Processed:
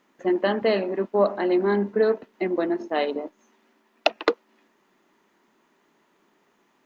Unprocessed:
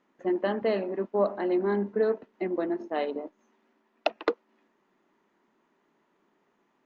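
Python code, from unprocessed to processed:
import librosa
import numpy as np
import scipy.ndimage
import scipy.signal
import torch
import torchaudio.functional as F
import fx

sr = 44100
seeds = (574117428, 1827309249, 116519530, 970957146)

y = fx.high_shelf(x, sr, hz=2600.0, db=8.5)
y = y * 10.0 ** (4.5 / 20.0)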